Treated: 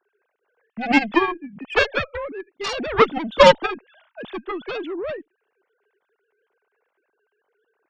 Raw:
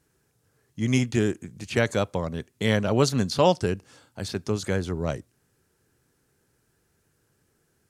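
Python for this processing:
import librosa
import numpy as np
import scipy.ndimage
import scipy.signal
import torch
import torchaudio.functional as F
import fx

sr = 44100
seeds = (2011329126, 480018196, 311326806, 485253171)

y = fx.sine_speech(x, sr)
y = fx.cheby_harmonics(y, sr, harmonics=(4, 7), levels_db=(-23, -12), full_scale_db=-8.0)
y = y * librosa.db_to_amplitude(6.5)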